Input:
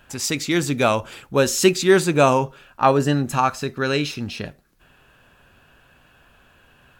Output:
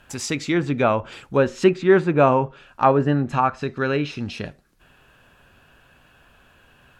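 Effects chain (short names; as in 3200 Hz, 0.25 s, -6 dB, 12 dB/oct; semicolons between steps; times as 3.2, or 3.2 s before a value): dynamic EQ 4700 Hz, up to -4 dB, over -38 dBFS, Q 1.1; treble ducked by the level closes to 2100 Hz, closed at -16.5 dBFS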